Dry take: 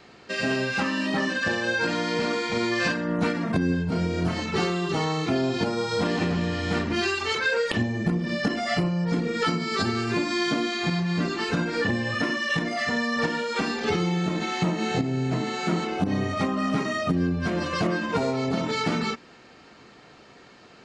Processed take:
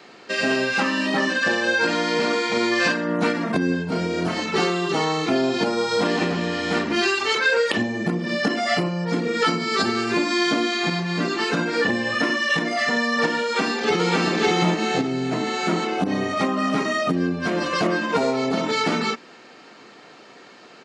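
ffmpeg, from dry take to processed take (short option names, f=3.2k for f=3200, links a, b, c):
-filter_complex "[0:a]asplit=2[a][b];[b]afade=t=in:st=13.43:d=0.01,afade=t=out:st=14.18:d=0.01,aecho=0:1:560|1120|1680:0.944061|0.188812|0.0377624[c];[a][c]amix=inputs=2:normalize=0,highpass=230,volume=5dB"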